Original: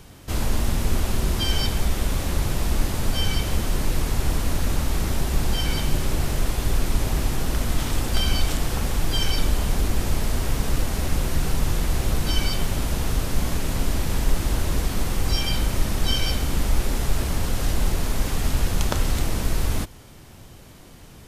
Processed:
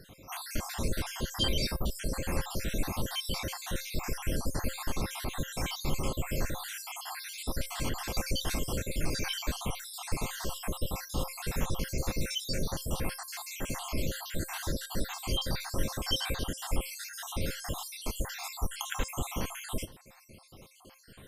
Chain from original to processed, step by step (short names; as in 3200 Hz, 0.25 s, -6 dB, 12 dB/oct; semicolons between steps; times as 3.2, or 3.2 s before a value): random spectral dropouts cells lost 64%; low shelf 89 Hz -9.5 dB; resonator 530 Hz, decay 0.23 s, harmonics all, mix 70%; gain +7 dB